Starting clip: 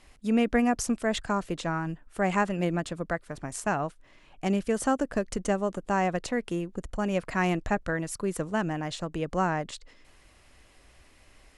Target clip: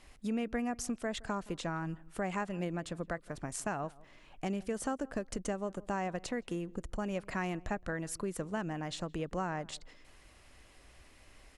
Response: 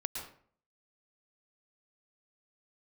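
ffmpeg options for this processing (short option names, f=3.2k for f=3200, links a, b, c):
-filter_complex "[0:a]acompressor=threshold=-34dB:ratio=2.5,asplit=2[a][b];[b]adelay=167,lowpass=f=1.3k:p=1,volume=-21.5dB,asplit=2[c][d];[d]adelay=167,lowpass=f=1.3k:p=1,volume=0.26[e];[a][c][e]amix=inputs=3:normalize=0,volume=-1.5dB"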